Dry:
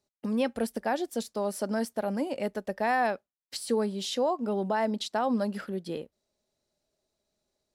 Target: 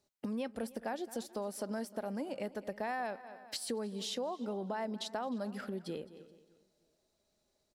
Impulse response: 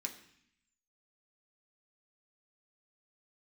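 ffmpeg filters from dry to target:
-filter_complex "[0:a]asplit=2[a][b];[b]aecho=0:1:214|428:0.0891|0.0258[c];[a][c]amix=inputs=2:normalize=0,acompressor=threshold=-41dB:ratio=3,asplit=2[d][e];[e]adelay=306,lowpass=f=3.9k:p=1,volume=-20dB,asplit=2[f][g];[g]adelay=306,lowpass=f=3.9k:p=1,volume=0.35,asplit=2[h][i];[i]adelay=306,lowpass=f=3.9k:p=1,volume=0.35[j];[f][h][j]amix=inputs=3:normalize=0[k];[d][k]amix=inputs=2:normalize=0,volume=2dB"

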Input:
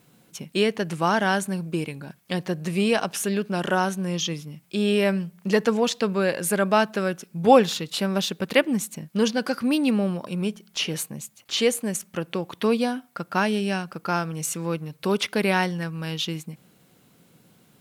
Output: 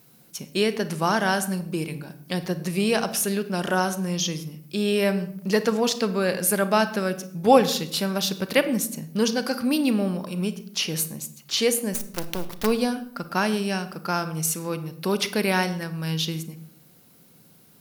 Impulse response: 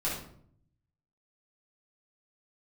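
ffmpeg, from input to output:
-filter_complex "[0:a]asplit=3[a][b][c];[a]afade=t=out:st=11.93:d=0.02[d];[b]acrusher=bits=4:dc=4:mix=0:aa=0.000001,afade=t=in:st=11.93:d=0.02,afade=t=out:st=12.65:d=0.02[e];[c]afade=t=in:st=12.65:d=0.02[f];[d][e][f]amix=inputs=3:normalize=0,aexciter=amount=2:drive=3.8:freq=4.4k,asplit=2[g][h];[1:a]atrim=start_sample=2205,adelay=32[i];[h][i]afir=irnorm=-1:irlink=0,volume=-18dB[j];[g][j]amix=inputs=2:normalize=0,volume=-1dB"

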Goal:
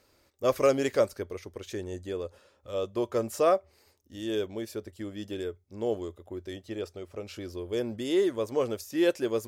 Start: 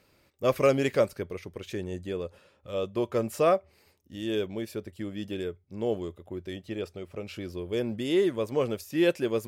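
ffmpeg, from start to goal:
-af "equalizer=f=160:t=o:w=0.67:g=-11,equalizer=f=2.5k:t=o:w=0.67:g=-5,equalizer=f=6.3k:t=o:w=0.67:g=4"

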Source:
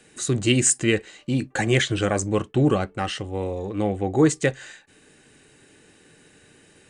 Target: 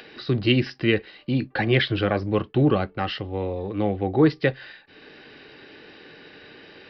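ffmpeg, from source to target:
-filter_complex "[0:a]acrossover=split=270[a][b];[b]acompressor=mode=upward:threshold=-35dB:ratio=2.5[c];[a][c]amix=inputs=2:normalize=0,aresample=11025,aresample=44100"

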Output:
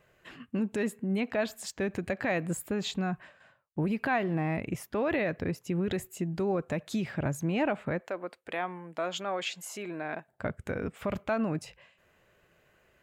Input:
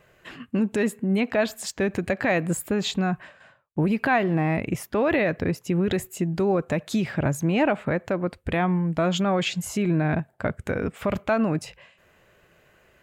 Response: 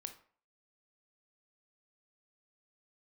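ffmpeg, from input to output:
-filter_complex "[0:a]asettb=1/sr,asplit=3[a][b][c];[a]atrim=end=8.014[d];[b]atrim=start=8.01:end=10.28,asetpts=PTS-STARTPTS,afade=t=in:d=0.004:c=qsin,afade=t=out:st=2.266:d=0.004:c=qsin,highpass=440[e];[c]atrim=start=10.276[f];[d][e]acrossfade=d=0.004:c1=hsin:c2=qsin[g];[g][f]acrossfade=d=0.004:c1=qsin:c2=hsin,volume=-7dB"

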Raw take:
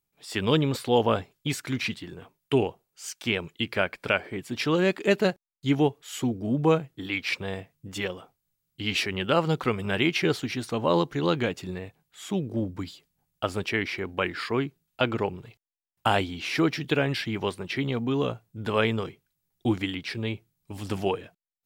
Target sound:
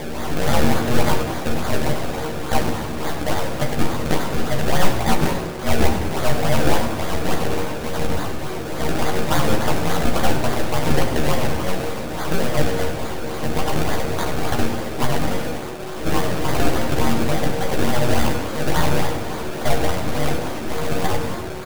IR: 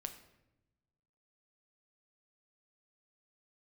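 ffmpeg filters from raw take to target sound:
-filter_complex "[0:a]aeval=exprs='val(0)+0.5*0.0531*sgn(val(0))':c=same,asplit=2[a][b];[b]alimiter=limit=-19dB:level=0:latency=1,volume=-1.5dB[c];[a][c]amix=inputs=2:normalize=0,aeval=exprs='val(0)*sin(2*PI*370*n/s)':c=same,acrusher=samples=31:mix=1:aa=0.000001:lfo=1:lforange=31:lforate=3.5,aeval=exprs='0.501*(cos(1*acos(clip(val(0)/0.501,-1,1)))-cos(1*PI/2))+0.0708*(cos(8*acos(clip(val(0)/0.501,-1,1)))-cos(8*PI/2))':c=same,asplit=2[d][e];[e]adelay=13,volume=-4dB[f];[d][f]amix=inputs=2:normalize=0,asplit=8[g][h][i][j][k][l][m][n];[h]adelay=97,afreqshift=110,volume=-12dB[o];[i]adelay=194,afreqshift=220,volume=-16.2dB[p];[j]adelay=291,afreqshift=330,volume=-20.3dB[q];[k]adelay=388,afreqshift=440,volume=-24.5dB[r];[l]adelay=485,afreqshift=550,volume=-28.6dB[s];[m]adelay=582,afreqshift=660,volume=-32.8dB[t];[n]adelay=679,afreqshift=770,volume=-36.9dB[u];[g][o][p][q][r][s][t][u]amix=inputs=8:normalize=0[v];[1:a]atrim=start_sample=2205[w];[v][w]afir=irnorm=-1:irlink=0,volume=1.5dB"

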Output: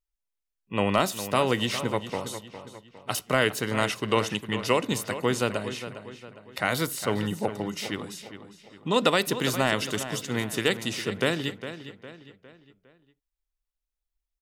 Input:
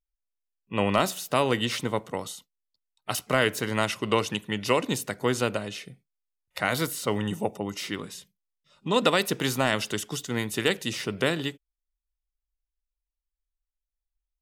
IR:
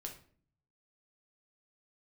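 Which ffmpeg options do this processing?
-filter_complex "[0:a]asplit=2[a][b];[b]adelay=407,lowpass=f=4.8k:p=1,volume=-11.5dB,asplit=2[c][d];[d]adelay=407,lowpass=f=4.8k:p=1,volume=0.44,asplit=2[e][f];[f]adelay=407,lowpass=f=4.8k:p=1,volume=0.44,asplit=2[g][h];[h]adelay=407,lowpass=f=4.8k:p=1,volume=0.44[i];[a][c][e][g][i]amix=inputs=5:normalize=0"

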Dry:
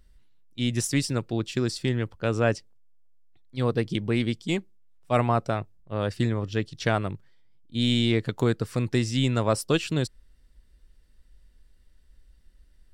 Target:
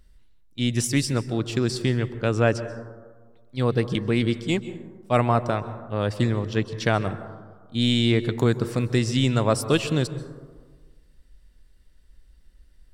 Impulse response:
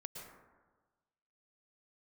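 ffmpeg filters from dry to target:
-filter_complex "[0:a]asplit=2[a][b];[1:a]atrim=start_sample=2205,asetrate=37044,aresample=44100[c];[b][c]afir=irnorm=-1:irlink=0,volume=-5dB[d];[a][d]amix=inputs=2:normalize=0"

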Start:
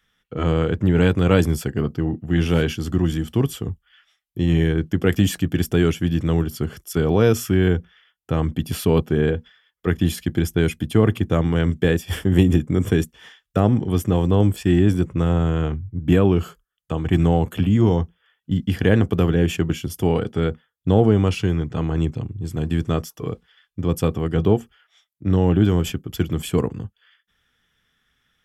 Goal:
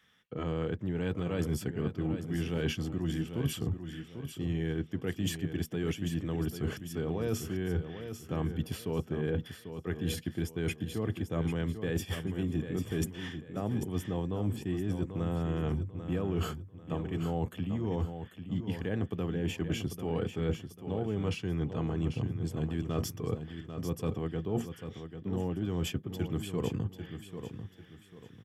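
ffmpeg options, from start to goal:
-af "highpass=90,highshelf=f=5.8k:g=-5,bandreject=f=1.4k:w=14,areverse,acompressor=threshold=-31dB:ratio=16,areverse,aecho=1:1:793|1586|2379|3172:0.355|0.11|0.0341|0.0106,volume=2dB"

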